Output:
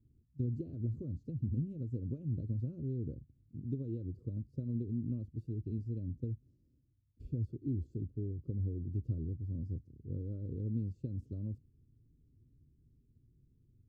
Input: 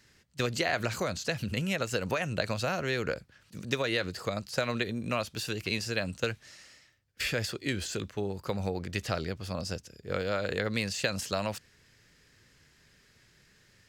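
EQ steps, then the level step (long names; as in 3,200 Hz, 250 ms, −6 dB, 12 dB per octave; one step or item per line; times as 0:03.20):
inverse Chebyshev low-pass filter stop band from 720 Hz, stop band 50 dB
parametric band 190 Hz −14.5 dB 0.31 octaves
+2.5 dB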